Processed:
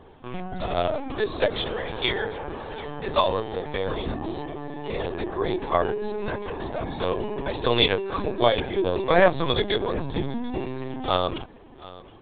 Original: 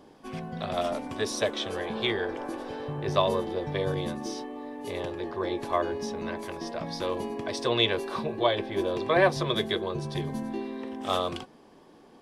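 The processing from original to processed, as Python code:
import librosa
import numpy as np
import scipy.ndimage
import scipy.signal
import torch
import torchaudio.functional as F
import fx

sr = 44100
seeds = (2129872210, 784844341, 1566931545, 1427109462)

y = fx.low_shelf(x, sr, hz=310.0, db=-9.5, at=(1.76, 4.07))
y = y + 10.0 ** (-19.5 / 20.0) * np.pad(y, (int(734 * sr / 1000.0), 0))[:len(y)]
y = fx.lpc_vocoder(y, sr, seeds[0], excitation='pitch_kept', order=16)
y = y * librosa.db_to_amplitude(4.5)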